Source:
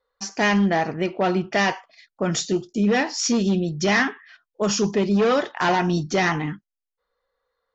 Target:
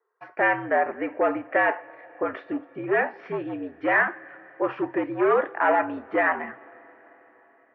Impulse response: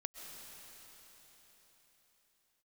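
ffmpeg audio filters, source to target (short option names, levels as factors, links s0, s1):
-filter_complex "[0:a]asplit=2[s0][s1];[1:a]atrim=start_sample=2205,asetrate=42336,aresample=44100[s2];[s1][s2]afir=irnorm=-1:irlink=0,volume=0.158[s3];[s0][s3]amix=inputs=2:normalize=0,highpass=f=430:t=q:w=0.5412,highpass=f=430:t=q:w=1.307,lowpass=f=2200:t=q:w=0.5176,lowpass=f=2200:t=q:w=0.7071,lowpass=f=2200:t=q:w=1.932,afreqshift=-70"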